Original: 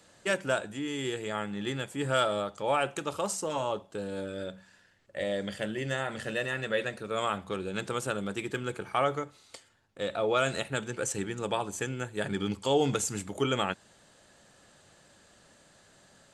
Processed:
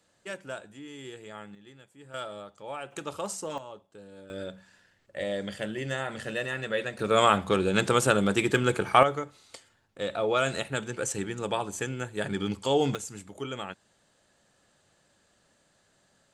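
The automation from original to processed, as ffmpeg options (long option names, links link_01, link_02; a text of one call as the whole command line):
ffmpeg -i in.wav -af "asetnsamples=nb_out_samples=441:pad=0,asendcmd='1.55 volume volume -19dB;2.14 volume volume -10.5dB;2.92 volume volume -2.5dB;3.58 volume volume -12.5dB;4.3 volume volume 0dB;6.99 volume volume 9.5dB;9.03 volume volume 1dB;12.95 volume volume -7.5dB',volume=-9.5dB" out.wav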